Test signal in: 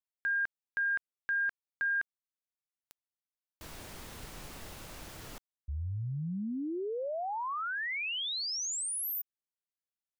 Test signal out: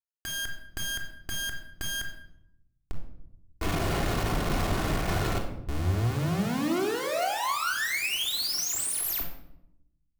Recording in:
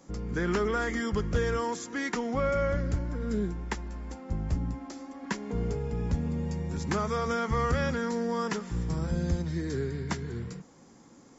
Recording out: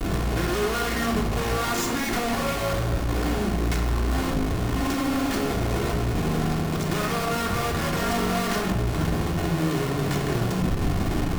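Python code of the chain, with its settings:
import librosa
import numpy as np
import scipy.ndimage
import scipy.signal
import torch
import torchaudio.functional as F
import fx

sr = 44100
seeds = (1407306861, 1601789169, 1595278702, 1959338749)

y = fx.cheby_harmonics(x, sr, harmonics=(2, 3, 5, 6), levels_db=(-18, -26, -11, -6), full_scale_db=-17.5)
y = fx.high_shelf(y, sr, hz=5100.0, db=-4.5)
y = fx.over_compress(y, sr, threshold_db=-27.0, ratio=-0.5)
y = fx.schmitt(y, sr, flips_db=-41.0)
y = fx.room_shoebox(y, sr, seeds[0], volume_m3=2200.0, walls='furnished', distance_m=3.3)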